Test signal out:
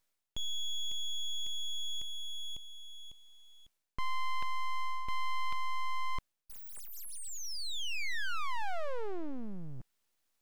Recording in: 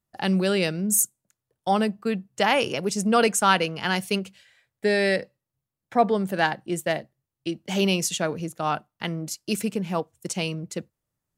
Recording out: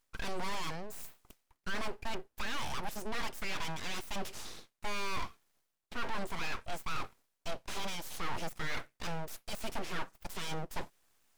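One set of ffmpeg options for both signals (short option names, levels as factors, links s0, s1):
-filter_complex "[0:a]bass=f=250:g=-7,treble=f=4000:g=10,areverse,acompressor=threshold=0.01:ratio=4,areverse,asplit=2[s0][s1];[s1]highpass=f=720:p=1,volume=28.2,asoftclip=type=tanh:threshold=0.075[s2];[s0][s2]amix=inputs=2:normalize=0,lowpass=f=1200:p=1,volume=0.501,aeval=exprs='abs(val(0))':c=same"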